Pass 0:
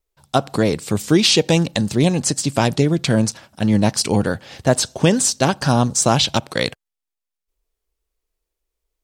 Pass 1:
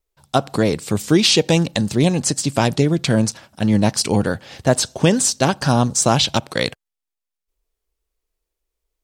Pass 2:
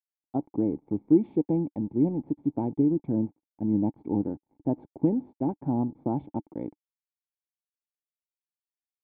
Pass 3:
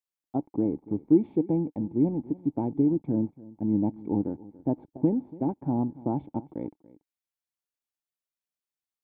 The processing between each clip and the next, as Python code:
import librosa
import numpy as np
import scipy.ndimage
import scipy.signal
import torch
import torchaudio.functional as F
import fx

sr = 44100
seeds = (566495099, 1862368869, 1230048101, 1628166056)

y1 = x
y2 = np.sign(y1) * np.maximum(np.abs(y1) - 10.0 ** (-34.0 / 20.0), 0.0)
y2 = fx.formant_cascade(y2, sr, vowel='u')
y3 = y2 + 10.0 ** (-20.0 / 20.0) * np.pad(y2, (int(285 * sr / 1000.0), 0))[:len(y2)]